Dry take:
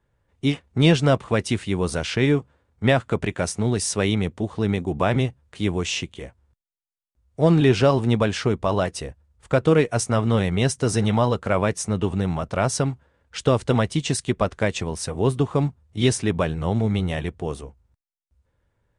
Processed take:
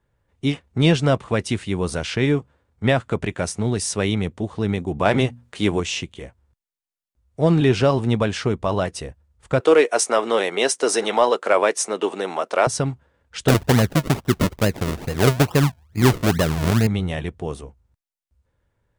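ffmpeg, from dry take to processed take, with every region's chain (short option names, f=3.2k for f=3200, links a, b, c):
-filter_complex "[0:a]asettb=1/sr,asplit=3[a][b][c];[a]atrim=end=5.054[d];[b]atrim=start=5.05:end=5.8,asetpts=PTS-STARTPTS,afade=t=in:d=0.004:c=qsin,afade=t=out:st=0.746:d=0.004:c=qsin,lowshelf=f=130:g=-10.5,bandreject=f=60:t=h:w=6,bandreject=f=120:t=h:w=6,bandreject=f=180:t=h:w=6,bandreject=f=240:t=h:w=6,acontrast=59[e];[c]atrim=start=5.796[f];[d][e]acrossfade=d=0.004:c1=hsin:c2=qsin[g];[g][f]acrossfade=d=0.004:c1=qsin:c2=hsin,asettb=1/sr,asplit=3[h][i][j];[h]atrim=end=9.604[k];[i]atrim=start=9.6:end=12.67,asetpts=PTS-STARTPTS,afade=t=in:d=0.004:c=qsin,afade=t=out:st=3.066:d=0.004:c=qsin,highpass=f=350:w=0.5412,highpass=f=350:w=1.3066,acontrast=50[l];[j]atrim=start=12.666[m];[k][l]acrossfade=d=0.004:c1=hsin:c2=qsin[n];[n][m]acrossfade=d=0.004:c1=qsin:c2=hsin,asettb=1/sr,asplit=3[o][p][q];[o]atrim=end=13.484[r];[p]atrim=start=13.48:end=16.87,asetpts=PTS-STARTPTS,afade=t=in:d=0.004:c=qsin,afade=t=out:st=3.386:d=0.004:c=qsin,tiltshelf=f=890:g=5,acrusher=samples=38:mix=1:aa=0.000001:lfo=1:lforange=38:lforate=2.3[s];[q]atrim=start=16.866[t];[r][s]acrossfade=d=0.004:c1=hsin:c2=qsin[u];[u][t]acrossfade=d=0.004:c1=qsin:c2=hsin"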